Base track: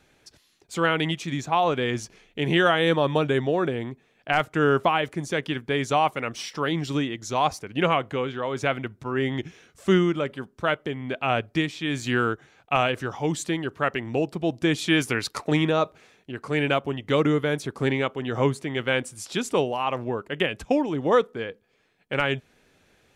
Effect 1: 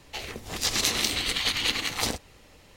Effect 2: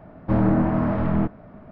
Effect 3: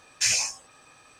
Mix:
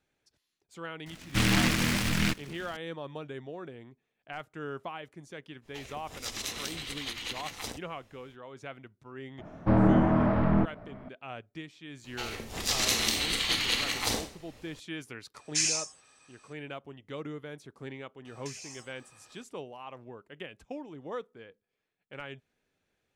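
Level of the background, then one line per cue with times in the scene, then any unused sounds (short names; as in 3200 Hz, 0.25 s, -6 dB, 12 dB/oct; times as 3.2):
base track -18 dB
1.06 add 2 -6 dB + noise-modulated delay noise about 2100 Hz, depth 0.46 ms
5.61 add 1 -11 dB, fades 0.05 s + notch 4400 Hz, Q 14
9.38 add 2 -0.5 dB + low shelf 410 Hz -3 dB
12.04 add 1 -3 dB + Schroeder reverb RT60 0.44 s, combs from 28 ms, DRR 5 dB
15.34 add 3 -11.5 dB + EQ curve 670 Hz 0 dB, 6100 Hz +8 dB, 10000 Hz +8 dB, 14000 Hz -11 dB
18.25 add 3 -6 dB + compressor 8:1, threshold -36 dBFS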